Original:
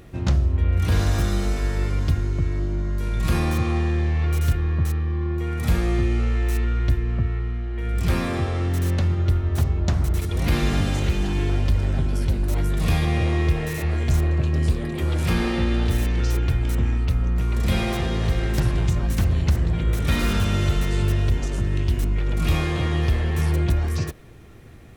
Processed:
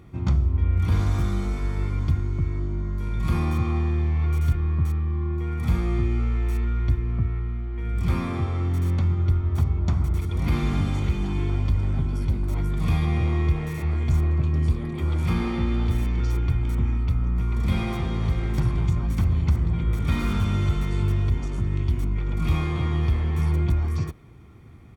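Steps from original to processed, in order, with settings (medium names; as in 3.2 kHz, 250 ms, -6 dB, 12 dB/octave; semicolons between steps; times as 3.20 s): high-pass 50 Hz; treble shelf 2.7 kHz -9 dB; comb 0.9 ms, depth 49%; trim -3.5 dB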